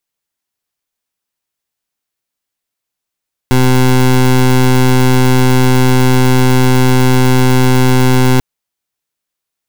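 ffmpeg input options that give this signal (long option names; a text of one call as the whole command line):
ffmpeg -f lavfi -i "aevalsrc='0.398*(2*lt(mod(128*t,1),0.21)-1)':duration=4.89:sample_rate=44100" out.wav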